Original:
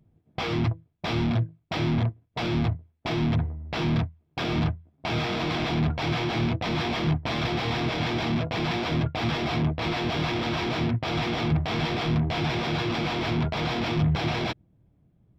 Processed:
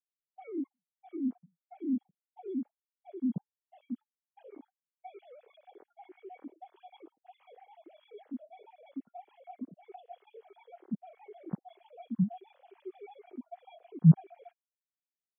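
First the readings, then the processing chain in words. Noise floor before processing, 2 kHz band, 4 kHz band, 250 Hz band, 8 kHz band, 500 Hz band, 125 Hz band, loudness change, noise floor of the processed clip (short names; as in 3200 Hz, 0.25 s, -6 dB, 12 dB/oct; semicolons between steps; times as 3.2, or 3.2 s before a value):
-67 dBFS, -35.0 dB, under -35 dB, -7.0 dB, n/a, -17.5 dB, -8.5 dB, -6.5 dB, under -85 dBFS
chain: sine-wave speech; spectral expander 2.5:1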